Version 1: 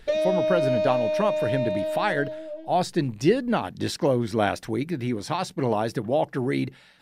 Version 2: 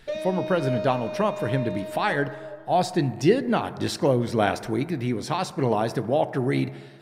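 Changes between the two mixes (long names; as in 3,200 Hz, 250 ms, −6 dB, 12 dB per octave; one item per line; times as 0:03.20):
background −6.5 dB
reverb: on, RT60 1.8 s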